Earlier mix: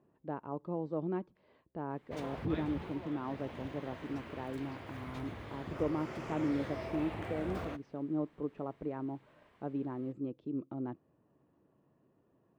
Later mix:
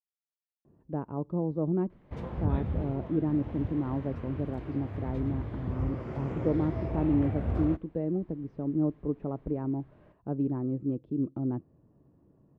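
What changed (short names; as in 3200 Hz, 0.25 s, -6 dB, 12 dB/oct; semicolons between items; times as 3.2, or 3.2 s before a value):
speech: entry +0.65 s; master: add tilt -4 dB/oct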